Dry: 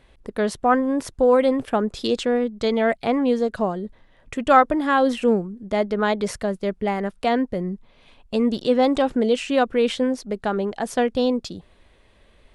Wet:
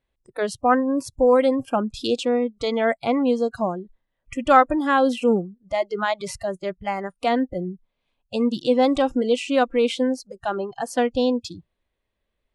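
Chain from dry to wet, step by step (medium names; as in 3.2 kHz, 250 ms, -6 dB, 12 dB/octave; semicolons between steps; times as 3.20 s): spectral noise reduction 23 dB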